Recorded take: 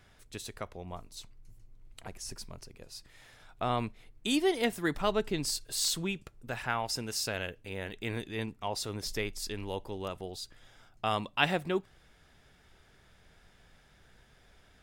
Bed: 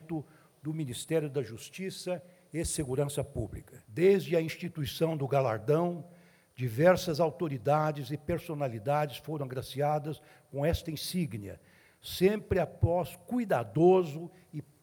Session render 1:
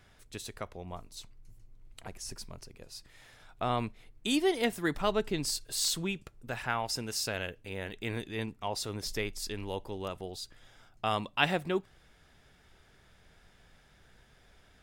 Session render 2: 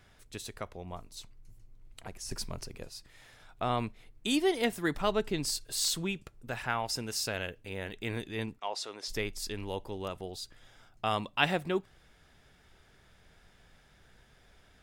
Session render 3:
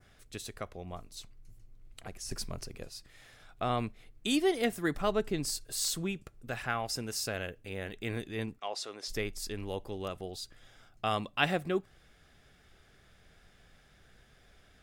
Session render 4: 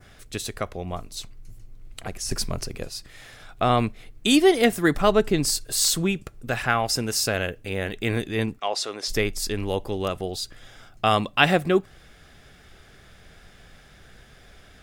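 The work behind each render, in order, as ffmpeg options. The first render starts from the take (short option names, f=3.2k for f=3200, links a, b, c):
-af anull
-filter_complex "[0:a]asettb=1/sr,asplit=3[a][b][c];[a]atrim=end=2.314[d];[b]atrim=start=2.31:end=2.89,asetpts=PTS-STARTPTS,afade=t=in:d=0.004:c=qsin,afade=t=out:st=0.576:d=0.004:c=qsin,acontrast=68[e];[c]atrim=start=2.886[f];[d][e]acrossfade=d=0.004:c1=hsin:c2=qsin[g];[g][f]acrossfade=d=0.004:c1=qsin:c2=hsin,asplit=3[h][i][j];[h]afade=t=out:st=8.58:d=0.02[k];[i]highpass=480,lowpass=7k,afade=t=in:st=8.58:d=0.02,afade=t=out:st=9.08:d=0.02[l];[j]afade=t=in:st=9.08:d=0.02[m];[k][l][m]amix=inputs=3:normalize=0"
-af "bandreject=f=930:w=7.2,adynamicequalizer=threshold=0.00316:dfrequency=3400:dqfactor=0.94:tfrequency=3400:tqfactor=0.94:attack=5:release=100:ratio=0.375:range=2.5:mode=cutabove:tftype=bell"
-af "volume=11dB,alimiter=limit=-2dB:level=0:latency=1"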